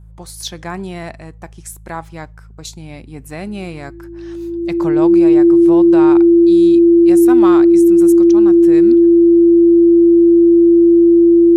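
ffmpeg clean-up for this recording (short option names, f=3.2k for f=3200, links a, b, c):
-af "bandreject=f=53.8:t=h:w=4,bandreject=f=107.6:t=h:w=4,bandreject=f=161.4:t=h:w=4,bandreject=f=340:w=30"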